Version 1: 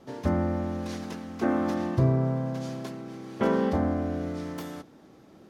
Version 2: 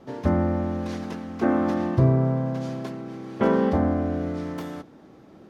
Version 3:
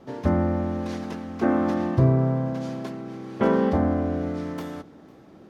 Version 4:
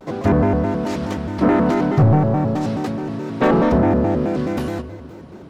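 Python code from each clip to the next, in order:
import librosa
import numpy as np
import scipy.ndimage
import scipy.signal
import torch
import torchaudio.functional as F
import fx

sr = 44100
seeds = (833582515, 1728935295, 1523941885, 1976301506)

y1 = fx.high_shelf(x, sr, hz=4100.0, db=-9.0)
y1 = y1 * 10.0 ** (4.0 / 20.0)
y2 = y1 + 10.0 ** (-24.0 / 20.0) * np.pad(y1, (int(501 * sr / 1000.0), 0))[:len(y1)]
y3 = 10.0 ** (-16.5 / 20.0) * np.tanh(y2 / 10.0 ** (-16.5 / 20.0))
y3 = fx.room_shoebox(y3, sr, seeds[0], volume_m3=3700.0, walls='mixed', distance_m=0.59)
y3 = fx.vibrato_shape(y3, sr, shape='square', rate_hz=4.7, depth_cents=250.0)
y3 = y3 * 10.0 ** (8.5 / 20.0)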